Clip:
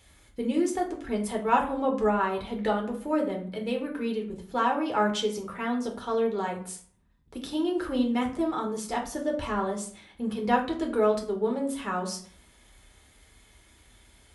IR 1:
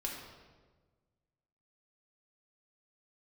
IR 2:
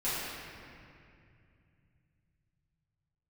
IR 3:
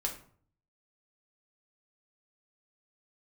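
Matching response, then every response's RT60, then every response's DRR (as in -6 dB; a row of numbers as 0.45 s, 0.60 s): 3; 1.4 s, 2.4 s, 0.50 s; -2.5 dB, -13.5 dB, 0.5 dB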